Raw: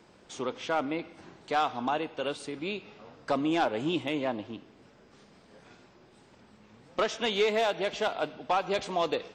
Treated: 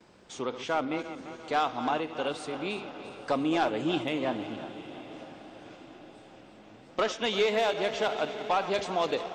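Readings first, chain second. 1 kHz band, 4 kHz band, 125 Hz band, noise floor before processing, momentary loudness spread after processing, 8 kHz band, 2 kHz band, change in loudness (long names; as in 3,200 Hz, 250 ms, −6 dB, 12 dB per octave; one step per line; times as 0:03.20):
+0.5 dB, +0.5 dB, +0.5 dB, −59 dBFS, 19 LU, +0.5 dB, +0.5 dB, +0.5 dB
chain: feedback delay that plays each chunk backwards 172 ms, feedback 69%, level −12 dB
noise gate with hold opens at −51 dBFS
feedback delay with all-pass diffusion 948 ms, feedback 51%, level −16 dB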